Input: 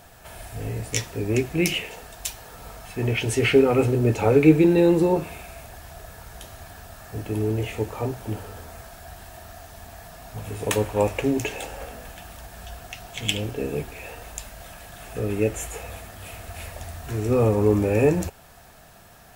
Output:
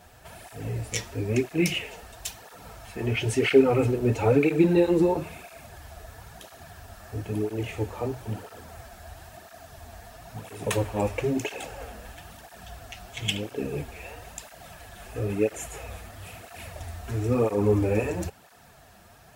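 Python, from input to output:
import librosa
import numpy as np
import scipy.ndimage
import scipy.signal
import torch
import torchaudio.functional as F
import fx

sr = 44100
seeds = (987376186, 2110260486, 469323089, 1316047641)

y = fx.high_shelf(x, sr, hz=10000.0, db=-4.5)
y = fx.flanger_cancel(y, sr, hz=1.0, depth_ms=7.9)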